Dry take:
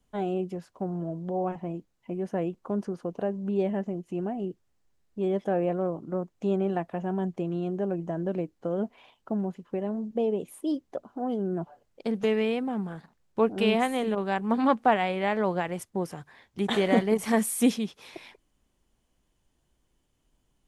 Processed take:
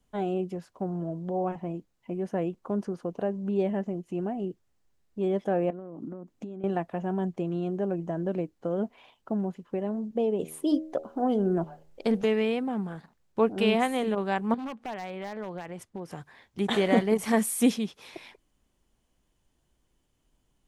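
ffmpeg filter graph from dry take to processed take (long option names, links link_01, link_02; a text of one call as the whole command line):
ffmpeg -i in.wav -filter_complex "[0:a]asettb=1/sr,asplit=3[link_01][link_02][link_03];[link_01]atrim=end=5.704[link_04];[link_02]atrim=start=5.7:end=6.64,asetpts=PTS-STARTPTS,afade=type=in:duration=0.004:curve=qsin,afade=type=out:start_time=0.936:duration=0.004:curve=qsin,acompressor=threshold=-40dB:ratio=20:attack=3.2:release=140:knee=1:detection=peak,equalizer=frequency=260:width=1.8:gain=11.5[link_05];[link_03]atrim=start=6.636[link_06];[link_04][link_05]acrossfade=duration=0.004:curve1=hsin:curve2=qsin[link_07];[link_07][link_06]acrossfade=duration=0.004:curve1=qsin:curve2=hsin,asettb=1/sr,asplit=3[link_08][link_09][link_10];[link_08]atrim=end=10.394[link_11];[link_09]atrim=start=10.39:end=12.22,asetpts=PTS-STARTPTS,afade=type=in:duration=0.004:curve=qsin,afade=type=out:start_time=1.826:duration=0.004:curve=qsin,bandreject=frequency=78.85:width_type=h:width=4,bandreject=frequency=157.7:width_type=h:width=4,bandreject=frequency=236.55:width_type=h:width=4,bandreject=frequency=315.4:width_type=h:width=4,bandreject=frequency=394.25:width_type=h:width=4,bandreject=frequency=473.1:width_type=h:width=4,bandreject=frequency=551.95:width_type=h:width=4,bandreject=frequency=630.8:width_type=h:width=4,bandreject=frequency=709.65:width_type=h:width=4,bandreject=frequency=788.5:width_type=h:width=4,bandreject=frequency=867.35:width_type=h:width=4,acontrast=27,asubboost=boost=7.5:cutoff=52[link_12];[link_10]atrim=start=12.216[link_13];[link_11][link_12]acrossfade=duration=0.004:curve1=hsin:curve2=qsin[link_14];[link_14][link_13]acrossfade=duration=0.004:curve1=qsin:curve2=hsin,asettb=1/sr,asplit=3[link_15][link_16][link_17];[link_15]atrim=end=14.544[link_18];[link_16]atrim=start=14.54:end=16.11,asetpts=PTS-STARTPTS,afade=type=in:duration=0.004:curve=qsin,afade=type=out:start_time=1.566:duration=0.004:curve=qsin,highshelf=frequency=6700:gain=-10,acompressor=threshold=-37dB:ratio=2.5:attack=3.2:release=140:knee=1:detection=peak,aeval=exprs='0.0355*(abs(mod(val(0)/0.0355+3,4)-2)-1)':channel_layout=same[link_19];[link_17]atrim=start=16.106[link_20];[link_18][link_19]acrossfade=duration=0.004:curve1=hsin:curve2=qsin[link_21];[link_21][link_20]acrossfade=duration=0.004:curve1=qsin:curve2=hsin" out.wav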